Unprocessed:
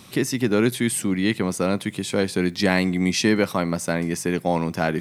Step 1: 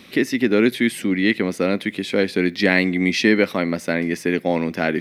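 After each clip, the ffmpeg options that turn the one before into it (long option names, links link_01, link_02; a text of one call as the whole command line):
ffmpeg -i in.wav -af "equalizer=frequency=125:width_type=o:width=1:gain=-8,equalizer=frequency=250:width_type=o:width=1:gain=7,equalizer=frequency=500:width_type=o:width=1:gain=5,equalizer=frequency=1000:width_type=o:width=1:gain=-5,equalizer=frequency=2000:width_type=o:width=1:gain=10,equalizer=frequency=4000:width_type=o:width=1:gain=4,equalizer=frequency=8000:width_type=o:width=1:gain=-9,volume=-2dB" out.wav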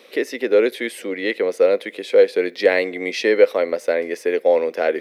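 ffmpeg -i in.wav -af "highpass=frequency=490:width_type=q:width=4.9,volume=-4dB" out.wav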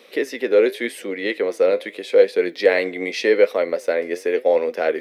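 ffmpeg -i in.wav -af "flanger=delay=3.9:depth=8:regen=72:speed=0.85:shape=triangular,volume=3.5dB" out.wav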